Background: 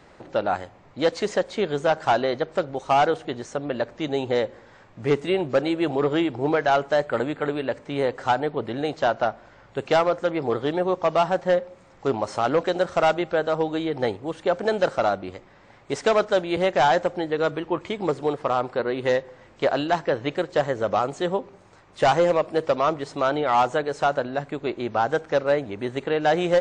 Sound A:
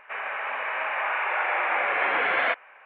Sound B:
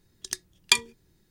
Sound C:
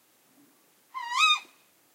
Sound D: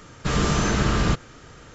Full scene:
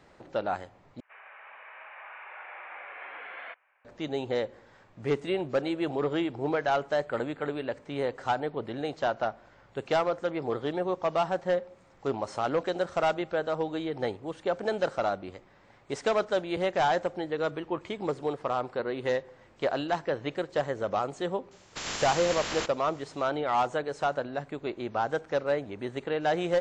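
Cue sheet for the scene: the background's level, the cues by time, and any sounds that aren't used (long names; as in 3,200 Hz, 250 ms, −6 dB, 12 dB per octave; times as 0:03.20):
background −6.5 dB
0:01.00: overwrite with A −18 dB + low-shelf EQ 270 Hz −10 dB
0:21.51: mix in D −14 dB + ceiling on every frequency bin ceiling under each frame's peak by 26 dB
not used: B, C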